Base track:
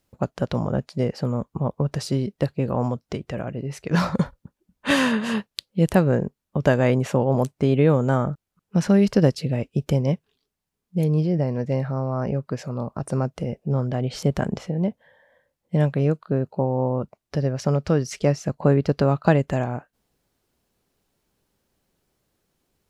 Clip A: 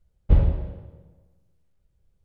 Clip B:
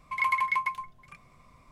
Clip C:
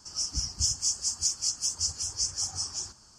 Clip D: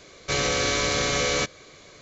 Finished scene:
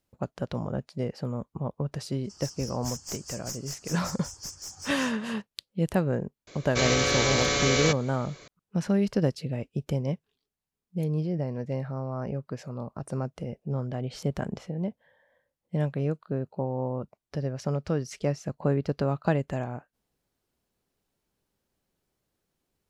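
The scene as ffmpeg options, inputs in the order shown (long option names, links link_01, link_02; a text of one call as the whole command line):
ffmpeg -i bed.wav -i cue0.wav -i cue1.wav -i cue2.wav -i cue3.wav -filter_complex "[0:a]volume=-7.5dB[link_01];[3:a]aeval=exprs='clip(val(0),-1,0.0355)':channel_layout=same,atrim=end=3.18,asetpts=PTS-STARTPTS,volume=-8.5dB,afade=type=in:duration=0.004:curve=hsin,afade=type=out:start_time=3.176:duration=0.004:curve=hsin,adelay=2240[link_02];[4:a]atrim=end=2.01,asetpts=PTS-STARTPTS,volume=-1dB,afade=type=in:duration=0.004:curve=hsin,afade=type=out:start_time=2.006:duration=0.004:curve=hsin,adelay=6470[link_03];[link_01][link_02][link_03]amix=inputs=3:normalize=0" out.wav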